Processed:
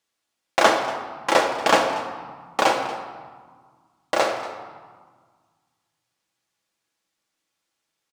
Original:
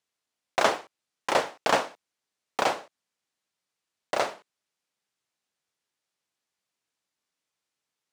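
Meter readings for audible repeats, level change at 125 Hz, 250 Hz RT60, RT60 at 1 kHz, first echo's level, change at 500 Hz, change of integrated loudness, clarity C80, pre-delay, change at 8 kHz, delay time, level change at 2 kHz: 1, +5.5 dB, 2.1 s, 1.7 s, −17.0 dB, +6.5 dB, +6.0 dB, 7.5 dB, 4 ms, +6.0 dB, 235 ms, +6.5 dB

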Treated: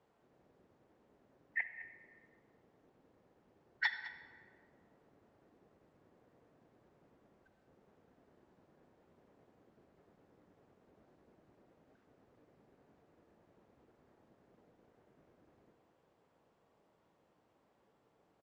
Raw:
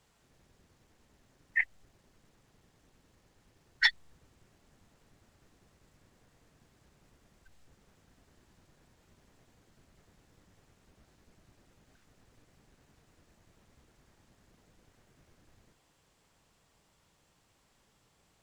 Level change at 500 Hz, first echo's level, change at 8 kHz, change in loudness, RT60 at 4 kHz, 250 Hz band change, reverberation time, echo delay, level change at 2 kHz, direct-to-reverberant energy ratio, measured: +2.0 dB, −16.0 dB, below −15 dB, −10.5 dB, 1.1 s, −1.0 dB, 1.9 s, 209 ms, −7.5 dB, 9.0 dB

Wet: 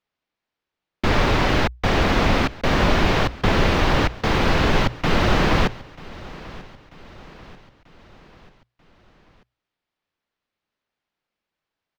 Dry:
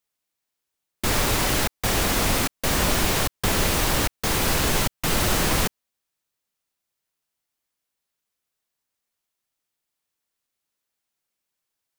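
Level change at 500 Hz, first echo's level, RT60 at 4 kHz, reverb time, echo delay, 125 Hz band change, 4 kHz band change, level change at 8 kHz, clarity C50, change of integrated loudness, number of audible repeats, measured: +5.5 dB, −20.0 dB, no reverb audible, no reverb audible, 939 ms, +5.5 dB, −0.5 dB, −13.5 dB, no reverb audible, +2.0 dB, 3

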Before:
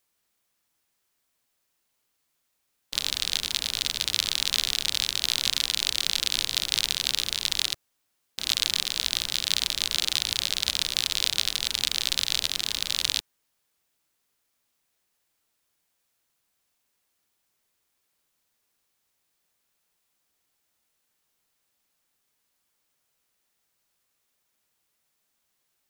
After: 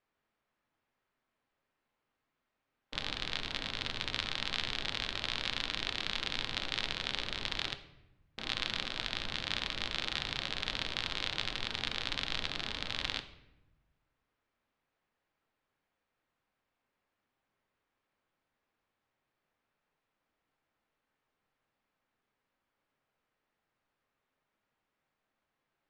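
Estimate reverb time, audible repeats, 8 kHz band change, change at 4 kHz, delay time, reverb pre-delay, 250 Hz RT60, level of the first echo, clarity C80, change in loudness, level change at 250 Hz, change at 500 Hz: 0.90 s, no echo audible, −22.0 dB, −11.0 dB, no echo audible, 3 ms, 1.4 s, no echo audible, 16.0 dB, −10.5 dB, +1.0 dB, +0.5 dB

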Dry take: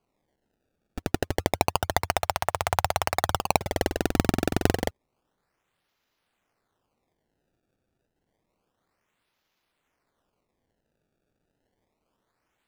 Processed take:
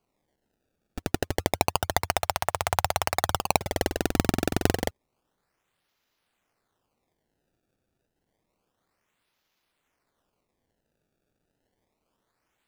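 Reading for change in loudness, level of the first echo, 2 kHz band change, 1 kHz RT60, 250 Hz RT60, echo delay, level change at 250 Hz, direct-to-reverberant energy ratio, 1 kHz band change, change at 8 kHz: −0.5 dB, no echo audible, 0.0 dB, no reverb audible, no reverb audible, no echo audible, −1.0 dB, no reverb audible, −1.0 dB, +2.0 dB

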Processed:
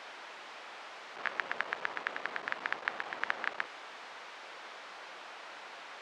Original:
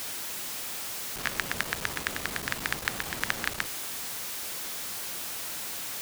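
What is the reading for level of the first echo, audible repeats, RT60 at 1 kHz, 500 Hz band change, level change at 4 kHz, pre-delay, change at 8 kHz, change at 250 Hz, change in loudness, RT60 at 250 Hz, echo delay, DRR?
no echo audible, no echo audible, no reverb audible, −3.5 dB, −11.5 dB, no reverb audible, −26.0 dB, −12.5 dB, −7.5 dB, no reverb audible, no echo audible, no reverb audible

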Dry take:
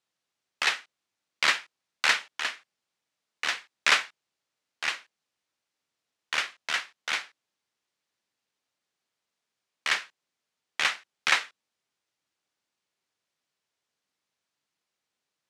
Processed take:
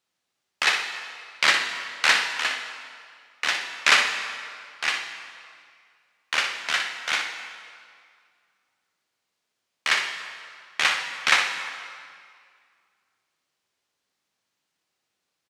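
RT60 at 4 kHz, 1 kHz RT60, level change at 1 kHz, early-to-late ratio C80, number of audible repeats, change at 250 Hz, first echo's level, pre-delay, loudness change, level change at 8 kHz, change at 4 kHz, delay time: 1.7 s, 2.1 s, +5.5 dB, 7.0 dB, 1, +5.5 dB, −8.0 dB, 7 ms, +4.5 dB, +5.0 dB, +5.0 dB, 61 ms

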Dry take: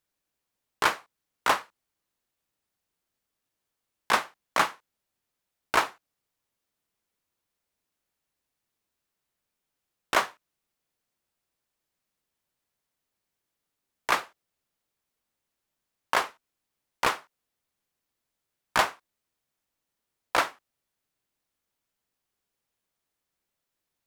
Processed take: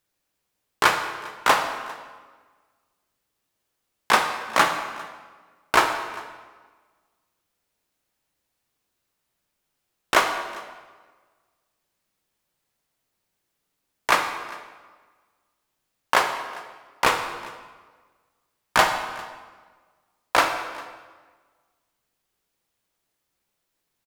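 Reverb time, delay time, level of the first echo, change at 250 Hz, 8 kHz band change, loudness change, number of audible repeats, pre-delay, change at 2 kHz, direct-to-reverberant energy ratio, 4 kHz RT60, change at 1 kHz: 1.5 s, 400 ms, −22.0 dB, +6.5 dB, +6.0 dB, +5.0 dB, 1, 11 ms, +6.0 dB, 5.0 dB, 1.2 s, +6.5 dB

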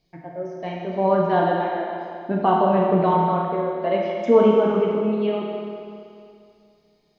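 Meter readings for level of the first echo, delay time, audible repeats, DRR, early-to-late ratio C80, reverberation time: no echo audible, no echo audible, no echo audible, −3.0 dB, 1.0 dB, 2.4 s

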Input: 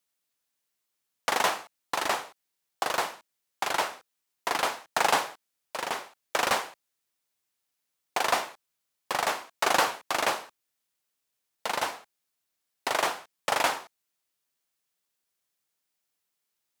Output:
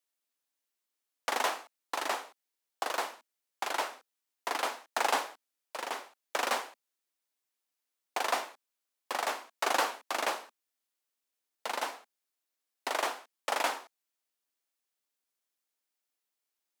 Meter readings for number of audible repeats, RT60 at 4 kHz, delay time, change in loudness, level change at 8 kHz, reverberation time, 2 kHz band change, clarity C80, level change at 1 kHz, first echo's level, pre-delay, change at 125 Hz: no echo audible, no reverb audible, no echo audible, −5.0 dB, −5.5 dB, no reverb audible, −5.5 dB, no reverb audible, −5.0 dB, no echo audible, no reverb audible, below −20 dB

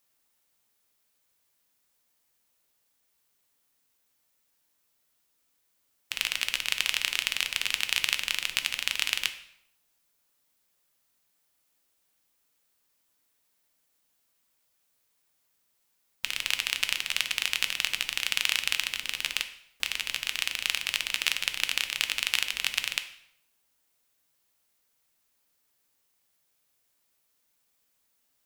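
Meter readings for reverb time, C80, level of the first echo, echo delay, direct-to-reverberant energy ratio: 0.75 s, 15.0 dB, no echo audible, no echo audible, 8.0 dB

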